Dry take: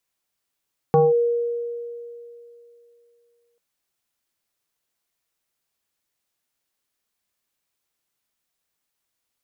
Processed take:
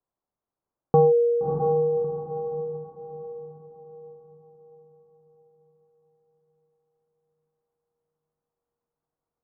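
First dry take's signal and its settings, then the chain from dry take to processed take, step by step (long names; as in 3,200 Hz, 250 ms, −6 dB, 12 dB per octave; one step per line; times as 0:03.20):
two-operator FM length 2.64 s, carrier 473 Hz, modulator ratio 0.68, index 1.1, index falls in 0.19 s linear, decay 2.85 s, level −11 dB
low-pass filter 1,100 Hz 24 dB per octave
on a send: feedback delay with all-pass diffusion 635 ms, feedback 43%, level −3.5 dB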